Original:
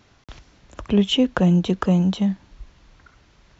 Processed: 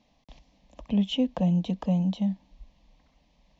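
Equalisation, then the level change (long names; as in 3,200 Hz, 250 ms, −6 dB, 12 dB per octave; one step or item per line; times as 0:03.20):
high-frequency loss of the air 110 metres
phaser with its sweep stopped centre 380 Hz, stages 6
−5.5 dB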